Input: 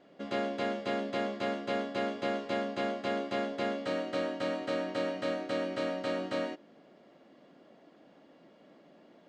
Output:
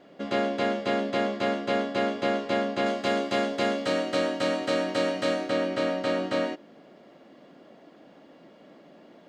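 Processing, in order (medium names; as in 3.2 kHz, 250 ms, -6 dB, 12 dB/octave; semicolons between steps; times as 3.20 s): 2.86–5.49 s: treble shelf 4.9 kHz +9.5 dB; trim +6.5 dB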